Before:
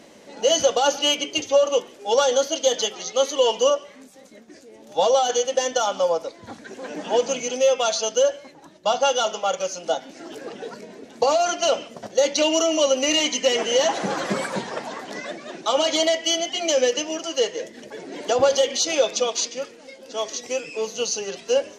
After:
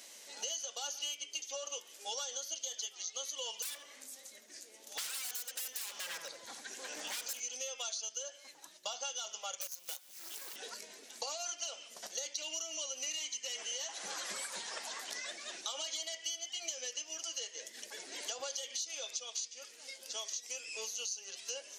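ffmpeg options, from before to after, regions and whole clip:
ffmpeg -i in.wav -filter_complex "[0:a]asettb=1/sr,asplit=3[link_01][link_02][link_03];[link_01]atrim=end=3.624[link_04];[link_02]atrim=start=3.62:end=7.4,asetpts=PTS-STARTPTS,afade=type=in:duration=0.004:curve=qsin,afade=type=out:start_time=3.776:duration=0.004:curve=qsin,aeval=exprs='0.0596*(abs(mod(val(0)/0.0596+3,4)-2)-1)':channel_layout=same,asplit=2[link_05][link_06];[link_06]adelay=79,lowpass=frequency=950:poles=1,volume=-4dB,asplit=2[link_07][link_08];[link_08]adelay=79,lowpass=frequency=950:poles=1,volume=0.53,asplit=2[link_09][link_10];[link_10]adelay=79,lowpass=frequency=950:poles=1,volume=0.53,asplit=2[link_11][link_12];[link_12]adelay=79,lowpass=frequency=950:poles=1,volume=0.53,asplit=2[link_13][link_14];[link_14]adelay=79,lowpass=frequency=950:poles=1,volume=0.53,asplit=2[link_15][link_16];[link_16]adelay=79,lowpass=frequency=950:poles=1,volume=0.53,asplit=2[link_17][link_18];[link_18]adelay=79,lowpass=frequency=950:poles=1,volume=0.53[link_19];[link_05][link_07][link_09][link_11][link_13][link_15][link_17][link_19]amix=inputs=8:normalize=0,atrim=end_sample=166698[link_20];[link_03]atrim=start=7.396[link_21];[link_04][link_20]acrossfade=duration=0.004:curve1=hsin:curve2=qsin[link_22];[link_22][link_21]acrossfade=duration=0.004:curve1=qsin:curve2=hsin,asettb=1/sr,asplit=3[link_23][link_24][link_25];[link_23]atrim=end=9.614[link_26];[link_24]atrim=start=9.61:end=10.56,asetpts=PTS-STARTPTS,afade=type=in:duration=0.004:curve=qsin,afade=type=out:start_time=0.946:duration=0.004:curve=qsin,equalizer=frequency=680:width_type=o:width=0.23:gain=-11.5,aecho=1:1:5.4:0.43,atrim=end_sample=41895,acrusher=bits=5:dc=4:mix=0:aa=0.000001[link_27];[link_25]atrim=start=10.556[link_28];[link_26][link_27]acrossfade=duration=0.004:curve1=hsin:curve2=qsin[link_29];[link_29][link_28]acrossfade=duration=0.004:curve1=qsin:curve2=hsin,aderivative,acompressor=threshold=-44dB:ratio=6,volume=5.5dB" out.wav

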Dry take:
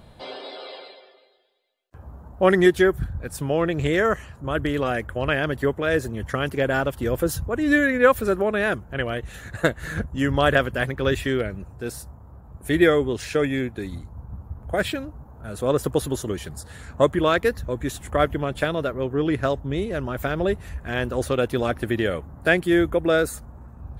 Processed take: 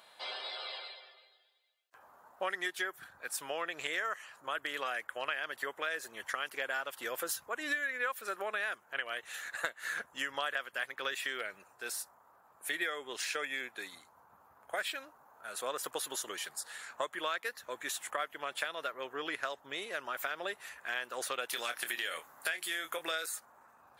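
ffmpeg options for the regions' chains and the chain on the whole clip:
ffmpeg -i in.wav -filter_complex "[0:a]asettb=1/sr,asplit=3[link_01][link_02][link_03];[link_01]atrim=end=21.484[link_04];[link_02]atrim=start=21.48:end=23.26,asetpts=PTS-STARTPTS,afade=type=in:duration=0.004:curve=qsin,afade=type=out:start_time=1.776:duration=0.004:curve=qsin,highshelf=frequency=2300:gain=11.5,acompressor=threshold=-21dB:ratio=2.5:attack=3.2:release=140:knee=1:detection=peak,asplit=2[link_05][link_06];[link_06]adelay=25,volume=-9dB[link_07];[link_05][link_07]amix=inputs=2:normalize=0,atrim=end_sample=78498[link_08];[link_03]atrim=start=23.256[link_09];[link_04][link_08]acrossfade=duration=0.004:curve1=hsin:curve2=qsin[link_10];[link_10][link_09]acrossfade=duration=0.004:curve1=qsin:curve2=hsin,highpass=1100,acompressor=threshold=-33dB:ratio=5" out.wav

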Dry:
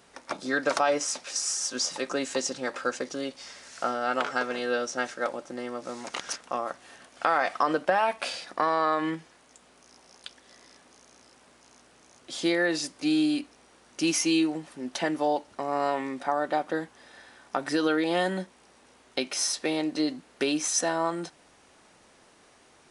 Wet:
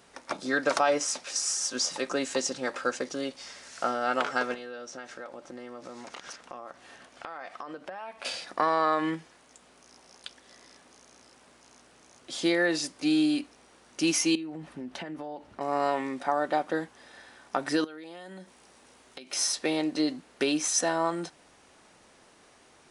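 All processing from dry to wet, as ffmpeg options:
ffmpeg -i in.wav -filter_complex "[0:a]asettb=1/sr,asplit=3[link_01][link_02][link_03];[link_01]atrim=end=4.544[link_04];[link_02]atrim=start=4.54:end=8.25,asetpts=PTS-STARTPTS,afade=type=in:duration=0.004:curve=qsin,afade=type=out:start_time=3.706:duration=0.004:curve=qsin,highshelf=frequency=8900:gain=-9.5,acompressor=threshold=-39dB:ratio=4:attack=3.2:release=140:knee=1:detection=peak[link_05];[link_03]atrim=start=8.246[link_06];[link_04][link_05]acrossfade=duration=0.004:curve1=hsin:curve2=qsin[link_07];[link_07][link_06]acrossfade=duration=0.004:curve1=qsin:curve2=hsin,asettb=1/sr,asplit=3[link_08][link_09][link_10];[link_08]atrim=end=14.354[link_11];[link_09]atrim=start=14.35:end=15.61,asetpts=PTS-STARTPTS,afade=type=in:duration=0.004:curve=qsin,afade=type=out:start_time=1.256:duration=0.004:curve=qsin,bass=frequency=250:gain=7,treble=frequency=4000:gain=-9,acompressor=threshold=-34dB:ratio=10:attack=3.2:release=140:knee=1:detection=peak[link_12];[link_10]atrim=start=15.606[link_13];[link_11][link_12]acrossfade=duration=0.004:curve1=hsin:curve2=qsin[link_14];[link_14][link_13]acrossfade=duration=0.004:curve1=qsin:curve2=hsin,asettb=1/sr,asplit=3[link_15][link_16][link_17];[link_15]atrim=end=17.844[link_18];[link_16]atrim=start=17.84:end=19.33,asetpts=PTS-STARTPTS,afade=type=in:duration=0.004:curve=qsin,afade=type=out:start_time=1.486:duration=0.004:curve=qsin,highshelf=frequency=6100:gain=5,acompressor=threshold=-40dB:ratio=10:attack=3.2:release=140:knee=1:detection=peak[link_19];[link_17]atrim=start=19.326[link_20];[link_18][link_19]acrossfade=duration=0.004:curve1=hsin:curve2=qsin[link_21];[link_21][link_20]acrossfade=duration=0.004:curve1=qsin:curve2=hsin" out.wav

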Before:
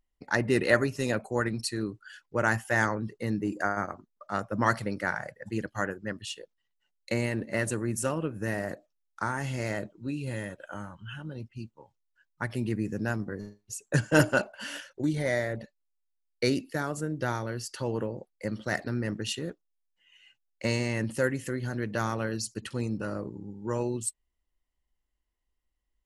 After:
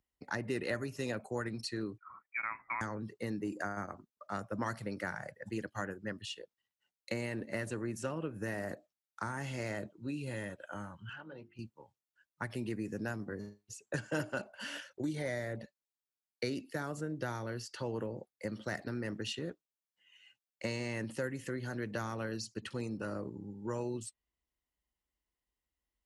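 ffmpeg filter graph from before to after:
ffmpeg -i in.wav -filter_complex "[0:a]asettb=1/sr,asplit=3[link_01][link_02][link_03];[link_01]atrim=end=1.984[link_04];[link_02]atrim=start=1.98:end=2.81,asetpts=PTS-STARTPTS,afade=type=in:duration=0.004:curve=qsin,afade=type=out:start_time=0.826:duration=0.004:curve=qsin,highpass=frequency=410:width=0.5412,highpass=frequency=410:width=1.3066,lowpass=frequency=2400:width_type=q:width=0.5098,lowpass=frequency=2400:width_type=q:width=0.6013,lowpass=frequency=2400:width_type=q:width=0.9,lowpass=frequency=2400:width_type=q:width=2.563,afreqshift=-2800[link_05];[link_03]atrim=start=2.806[link_06];[link_04][link_05]acrossfade=duration=0.004:curve1=hsin:curve2=qsin[link_07];[link_07][link_06]acrossfade=duration=0.004:curve1=qsin:curve2=hsin,asettb=1/sr,asplit=3[link_08][link_09][link_10];[link_08]atrim=end=11.094[link_11];[link_09]atrim=start=11.09:end=11.59,asetpts=PTS-STARTPTS,afade=type=in:duration=0.004:curve=qsin,afade=type=out:start_time=0.496:duration=0.004:curve=qsin,bass=frequency=250:gain=-9,treble=frequency=4000:gain=-13,asplit=2[link_12][link_13];[link_13]highpass=frequency=720:poles=1,volume=9dB,asoftclip=type=tanh:threshold=-31.5dB[link_14];[link_12][link_14]amix=inputs=2:normalize=0,lowpass=frequency=2400:poles=1,volume=-6dB,bandreject=frequency=50:width_type=h:width=6,bandreject=frequency=100:width_type=h:width=6,bandreject=frequency=150:width_type=h:width=6,bandreject=frequency=200:width_type=h:width=6,bandreject=frequency=250:width_type=h:width=6,bandreject=frequency=300:width_type=h:width=6,bandreject=frequency=350:width_type=h:width=6,bandreject=frequency=400:width_type=h:width=6,bandreject=frequency=450:width_type=h:width=6[link_15];[link_10]atrim=start=11.586[link_16];[link_11][link_15]acrossfade=duration=0.004:curve1=hsin:curve2=qsin[link_17];[link_17][link_16]acrossfade=duration=0.004:curve1=qsin:curve2=hsin,highpass=61,acrossover=split=270|5900[link_18][link_19][link_20];[link_18]acompressor=threshold=-38dB:ratio=4[link_21];[link_19]acompressor=threshold=-32dB:ratio=4[link_22];[link_20]acompressor=threshold=-54dB:ratio=4[link_23];[link_21][link_22][link_23]amix=inputs=3:normalize=0,volume=-3.5dB" out.wav

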